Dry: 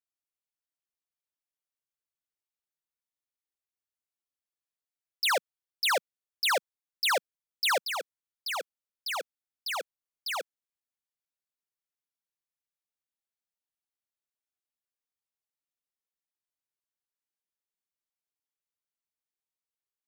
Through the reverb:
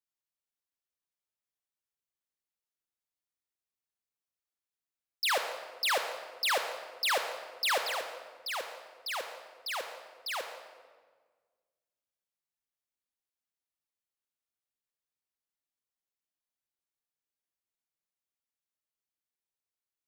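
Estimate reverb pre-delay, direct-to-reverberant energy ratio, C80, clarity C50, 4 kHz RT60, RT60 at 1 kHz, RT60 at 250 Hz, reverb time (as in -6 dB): 29 ms, 5.5 dB, 8.0 dB, 6.5 dB, 1.1 s, 1.4 s, 1.9 s, 1.5 s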